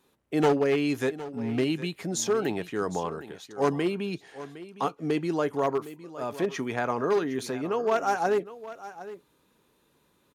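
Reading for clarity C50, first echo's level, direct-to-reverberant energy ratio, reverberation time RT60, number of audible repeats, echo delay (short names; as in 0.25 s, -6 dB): none, -15.5 dB, none, none, 1, 0.761 s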